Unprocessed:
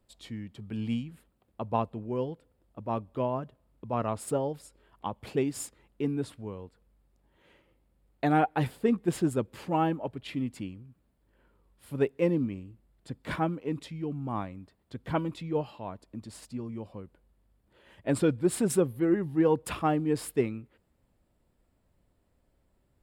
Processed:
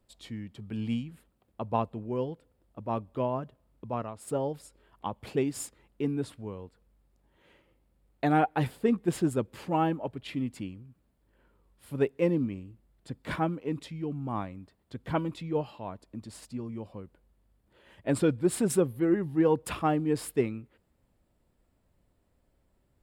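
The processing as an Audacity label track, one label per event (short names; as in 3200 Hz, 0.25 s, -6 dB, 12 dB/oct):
3.860000	4.420000	dip -10.5 dB, fades 0.26 s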